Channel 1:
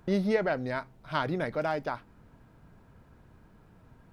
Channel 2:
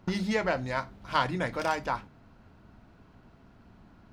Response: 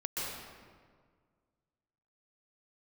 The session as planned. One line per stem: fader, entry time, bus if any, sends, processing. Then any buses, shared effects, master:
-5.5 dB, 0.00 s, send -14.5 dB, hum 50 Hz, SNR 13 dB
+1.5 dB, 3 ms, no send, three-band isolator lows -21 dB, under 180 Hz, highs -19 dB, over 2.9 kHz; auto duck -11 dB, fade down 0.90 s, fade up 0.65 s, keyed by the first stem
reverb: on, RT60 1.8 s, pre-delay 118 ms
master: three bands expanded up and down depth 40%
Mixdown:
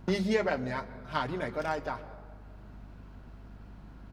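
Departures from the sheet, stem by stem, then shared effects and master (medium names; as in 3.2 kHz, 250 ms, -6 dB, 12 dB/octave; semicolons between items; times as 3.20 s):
stem 2: missing three-band isolator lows -21 dB, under 180 Hz, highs -19 dB, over 2.9 kHz; master: missing three bands expanded up and down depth 40%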